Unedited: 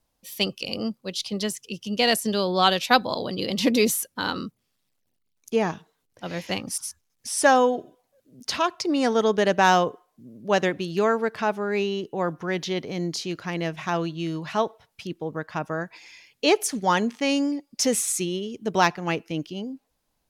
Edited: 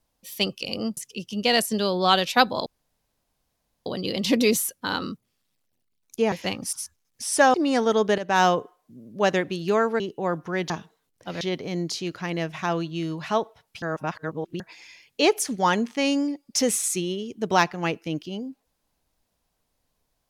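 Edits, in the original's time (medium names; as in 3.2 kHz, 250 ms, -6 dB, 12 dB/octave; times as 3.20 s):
0.97–1.51 s: delete
3.20 s: insert room tone 1.20 s
5.66–6.37 s: move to 12.65 s
7.59–8.83 s: delete
9.47–9.74 s: fade in, from -14 dB
11.29–11.95 s: delete
15.06–15.84 s: reverse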